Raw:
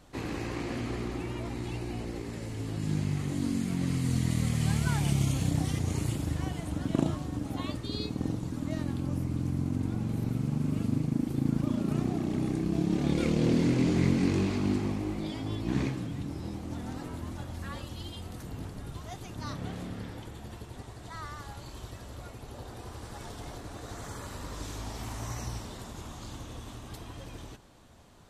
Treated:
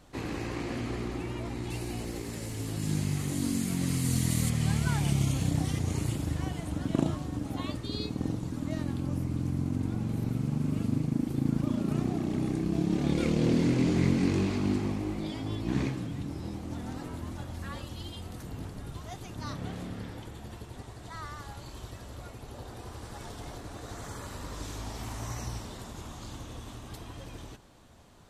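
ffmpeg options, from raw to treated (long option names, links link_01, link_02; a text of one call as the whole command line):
ffmpeg -i in.wav -filter_complex "[0:a]asettb=1/sr,asplit=3[link_01][link_02][link_03];[link_01]atrim=end=1.704[link_04];[link_02]atrim=start=1.7:end=4.5,asetpts=PTS-STARTPTS,afade=type=in:duration=0.004:curve=qsin,afade=type=out:start_time=2.796:duration=0.004:curve=qsin,aemphasis=mode=production:type=50kf[link_05];[link_03]atrim=start=4.496[link_06];[link_04][link_05]acrossfade=duration=0.004:curve1=hsin:curve2=qsin[link_07];[link_07][link_06]acrossfade=duration=0.004:curve1=qsin:curve2=hsin" out.wav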